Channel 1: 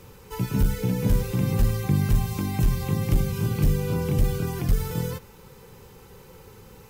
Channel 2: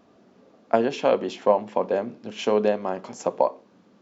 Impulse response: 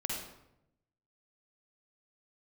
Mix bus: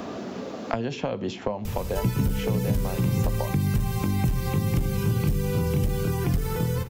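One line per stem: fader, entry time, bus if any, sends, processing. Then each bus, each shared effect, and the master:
-0.5 dB, 1.65 s, send -15.5 dB, compressor, threshold -20 dBFS, peak gain reduction 5.5 dB
-6.5 dB, 0.00 s, no send, compressor 3:1, threshold -24 dBFS, peak gain reduction 9 dB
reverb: on, RT60 0.85 s, pre-delay 45 ms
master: three-band squash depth 100%

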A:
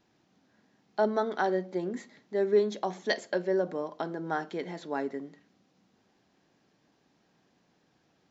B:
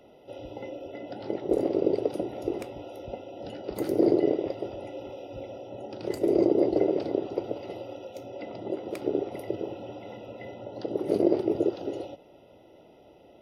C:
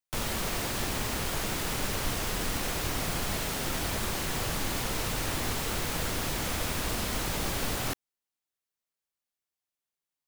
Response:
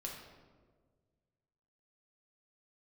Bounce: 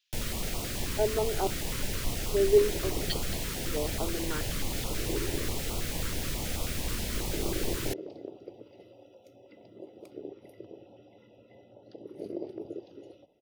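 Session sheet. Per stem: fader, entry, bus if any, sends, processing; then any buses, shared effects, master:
-4.0 dB, 0.00 s, no send, LFO high-pass square 0.68 Hz 380–3100 Hz
-13.5 dB, 1.10 s, no send, dry
-2.5 dB, 0.00 s, no send, low shelf 69 Hz +6 dB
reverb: off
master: stepped notch 9.3 Hz 730–1700 Hz

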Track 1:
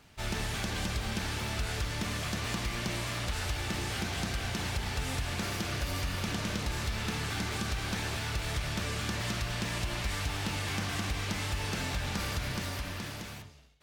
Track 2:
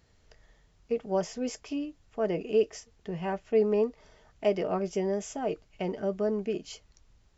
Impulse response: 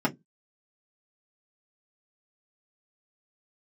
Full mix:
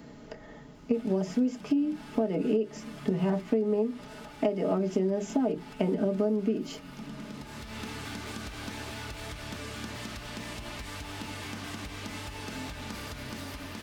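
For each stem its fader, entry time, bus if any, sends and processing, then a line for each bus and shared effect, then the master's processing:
-2.5 dB, 0.75 s, send -17.5 dB, compressor, threshold -34 dBFS, peak gain reduction 6.5 dB; auto duck -12 dB, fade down 1.30 s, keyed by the second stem
-1.5 dB, 0.00 s, send -9.5 dB, low shelf 280 Hz +7.5 dB; three-band squash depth 40%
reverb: on, RT60 0.15 s, pre-delay 3 ms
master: compressor 12:1, threshold -23 dBFS, peak gain reduction 13.5 dB

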